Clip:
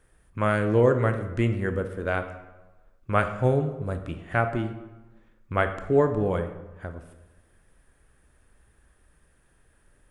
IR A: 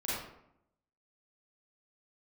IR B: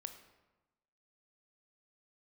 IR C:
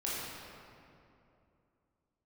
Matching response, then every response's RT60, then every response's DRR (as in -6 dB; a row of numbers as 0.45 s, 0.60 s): B; 0.75 s, 1.1 s, 2.7 s; -9.5 dB, 7.5 dB, -8.0 dB